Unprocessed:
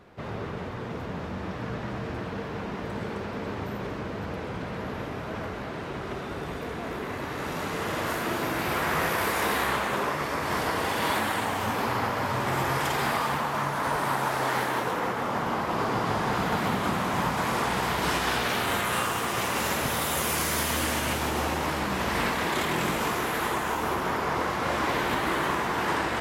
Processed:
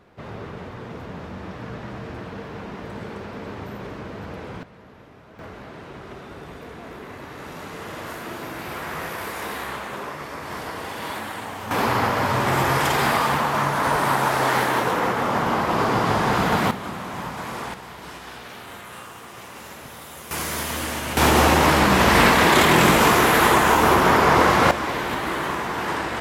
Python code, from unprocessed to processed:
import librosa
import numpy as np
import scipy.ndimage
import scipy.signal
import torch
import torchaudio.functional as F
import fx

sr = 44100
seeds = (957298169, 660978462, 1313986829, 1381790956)

y = fx.gain(x, sr, db=fx.steps((0.0, -1.0), (4.63, -13.5), (5.39, -4.5), (11.71, 6.5), (16.71, -4.5), (17.74, -12.0), (20.31, -0.5), (21.17, 12.0), (24.71, 1.0)))